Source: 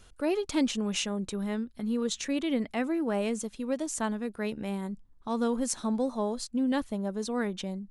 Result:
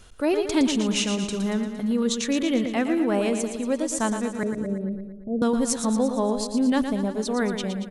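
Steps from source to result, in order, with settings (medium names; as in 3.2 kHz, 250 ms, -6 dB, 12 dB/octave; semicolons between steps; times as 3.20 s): 4.43–5.42 s: steep low-pass 630 Hz 72 dB/octave; on a send: feedback delay 115 ms, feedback 58%, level -8 dB; on the sum: trim +5.5 dB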